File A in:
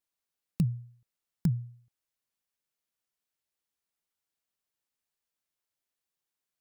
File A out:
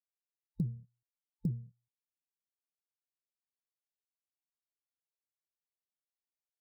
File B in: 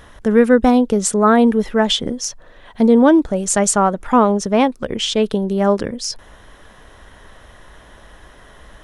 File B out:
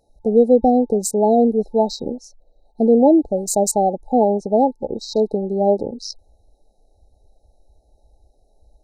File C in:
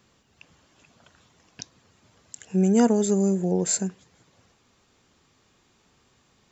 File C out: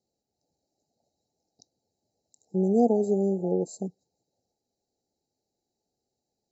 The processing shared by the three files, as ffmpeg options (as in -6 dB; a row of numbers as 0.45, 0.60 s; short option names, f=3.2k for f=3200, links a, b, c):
-af "afwtdn=0.0501,afftfilt=real='re*(1-between(b*sr/4096,880,3800))':imag='im*(1-between(b*sr/4096,880,3800))':win_size=4096:overlap=0.75,bass=f=250:g=-9,treble=f=4k:g=-5,volume=1dB"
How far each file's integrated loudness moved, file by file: -6.5, -2.0, -3.0 LU